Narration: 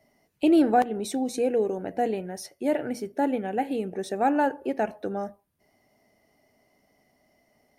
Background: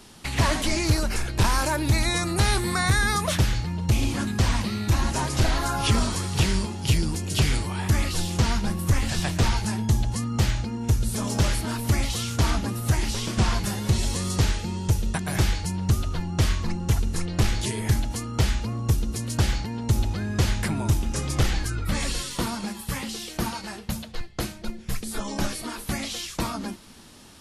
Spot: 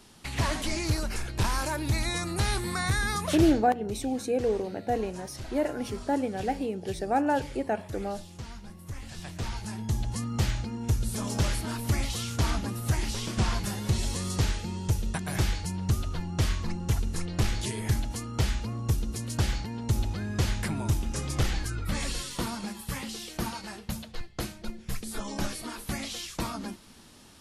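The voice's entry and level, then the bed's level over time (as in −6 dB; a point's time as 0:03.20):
2.90 s, −2.5 dB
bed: 0:03.48 −6 dB
0:03.71 −19 dB
0:08.79 −19 dB
0:10.19 −4.5 dB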